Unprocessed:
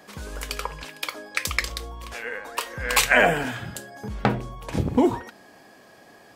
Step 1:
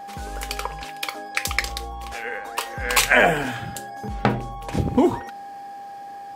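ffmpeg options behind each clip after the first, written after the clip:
ffmpeg -i in.wav -af "aeval=exprs='val(0)+0.0158*sin(2*PI*800*n/s)':channel_layout=same,volume=1.5dB" out.wav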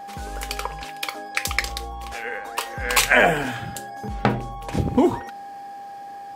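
ffmpeg -i in.wav -af anull out.wav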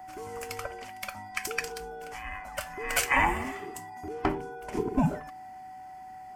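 ffmpeg -i in.wav -af "afftfilt=real='real(if(between(b,1,1008),(2*floor((b-1)/24)+1)*24-b,b),0)':imag='imag(if(between(b,1,1008),(2*floor((b-1)/24)+1)*24-b,b),0)*if(between(b,1,1008),-1,1)':win_size=2048:overlap=0.75,equalizer=frequency=3800:width=3.8:gain=-13,volume=-7.5dB" out.wav

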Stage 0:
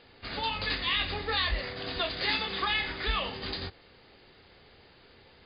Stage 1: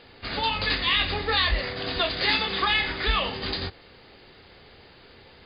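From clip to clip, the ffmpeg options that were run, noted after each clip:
ffmpeg -i in.wav -af "acontrast=49" out.wav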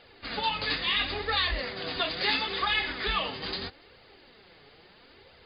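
ffmpeg -i in.wav -af "lowshelf=frequency=120:gain=-5.5,flanger=delay=1.3:depth=6:regen=34:speed=0.75:shape=triangular" out.wav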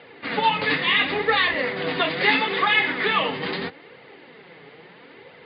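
ffmpeg -i in.wav -af "acontrast=66,highpass=frequency=120:width=0.5412,highpass=frequency=120:width=1.3066,equalizer=frequency=160:width_type=q:width=4:gain=7,equalizer=frequency=280:width_type=q:width=4:gain=5,equalizer=frequency=470:width_type=q:width=4:gain=6,equalizer=frequency=940:width_type=q:width=4:gain=4,equalizer=frequency=2000:width_type=q:width=4:gain=6,lowpass=frequency=3400:width=0.5412,lowpass=frequency=3400:width=1.3066" out.wav

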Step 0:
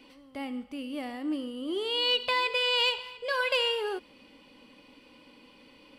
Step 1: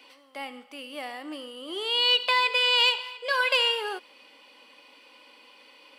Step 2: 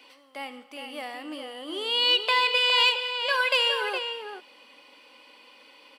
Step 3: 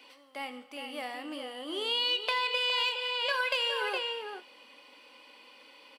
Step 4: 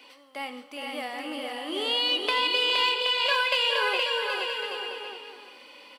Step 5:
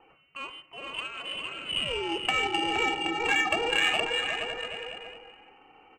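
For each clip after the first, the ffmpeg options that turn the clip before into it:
ffmpeg -i in.wav -af "highpass=630,volume=5dB" out.wav
ffmpeg -i in.wav -filter_complex "[0:a]asplit=2[link_01][link_02];[link_02]adelay=414,volume=-6dB,highshelf=frequency=4000:gain=-9.32[link_03];[link_01][link_03]amix=inputs=2:normalize=0" out.wav
ffmpeg -i in.wav -filter_complex "[0:a]acompressor=threshold=-25dB:ratio=6,aeval=exprs='0.2*(cos(1*acos(clip(val(0)/0.2,-1,1)))-cos(1*PI/2))+0.0141*(cos(3*acos(clip(val(0)/0.2,-1,1)))-cos(3*PI/2))':channel_layout=same,asplit=2[link_01][link_02];[link_02]adelay=28,volume=-13.5dB[link_03];[link_01][link_03]amix=inputs=2:normalize=0" out.wav
ffmpeg -i in.wav -af "aecho=1:1:470|775.5|974.1|1103|1187:0.631|0.398|0.251|0.158|0.1,volume=3.5dB" out.wav
ffmpeg -i in.wav -af "tiltshelf=frequency=800:gain=6,lowpass=frequency=2800:width_type=q:width=0.5098,lowpass=frequency=2800:width_type=q:width=0.6013,lowpass=frequency=2800:width_type=q:width=0.9,lowpass=frequency=2800:width_type=q:width=2.563,afreqshift=-3300,adynamicsmooth=sensitivity=1.5:basefreq=1200,volume=4.5dB" out.wav

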